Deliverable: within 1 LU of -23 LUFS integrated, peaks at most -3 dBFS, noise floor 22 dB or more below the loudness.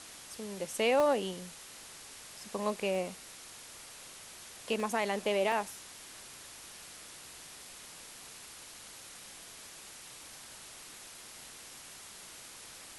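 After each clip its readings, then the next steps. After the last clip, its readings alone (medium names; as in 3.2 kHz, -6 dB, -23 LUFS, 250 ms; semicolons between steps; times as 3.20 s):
dropouts 4; longest dropout 1.3 ms; noise floor -50 dBFS; noise floor target -60 dBFS; loudness -38.0 LUFS; peak level -17.5 dBFS; loudness target -23.0 LUFS
-> interpolate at 1.00/2.95/4.80/5.52 s, 1.3 ms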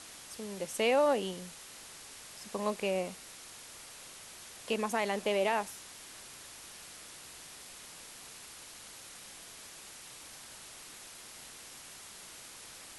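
dropouts 0; noise floor -50 dBFS; noise floor target -60 dBFS
-> noise reduction 10 dB, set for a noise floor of -50 dBFS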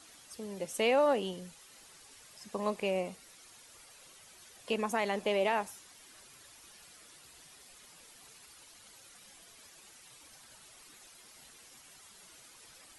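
noise floor -57 dBFS; loudness -32.5 LUFS; peak level -17.5 dBFS; loudness target -23.0 LUFS
-> trim +9.5 dB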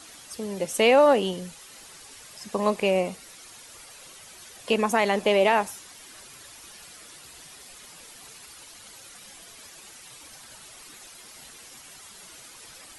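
loudness -23.0 LUFS; peak level -8.0 dBFS; noise floor -48 dBFS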